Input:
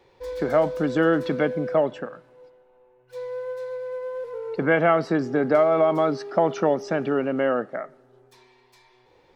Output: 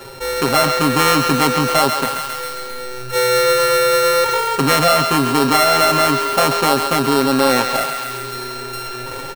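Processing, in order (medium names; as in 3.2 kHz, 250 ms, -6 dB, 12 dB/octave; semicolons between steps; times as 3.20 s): sorted samples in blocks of 32 samples; comb 7.5 ms, depth 91%; in parallel at -6.5 dB: hysteresis with a dead band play -25 dBFS; on the sum: level rider gain up to 14 dB; on a send: thinning echo 135 ms, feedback 65%, high-pass 810 Hz, level -11 dB; on the sum: level flattener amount 50%; trim -3 dB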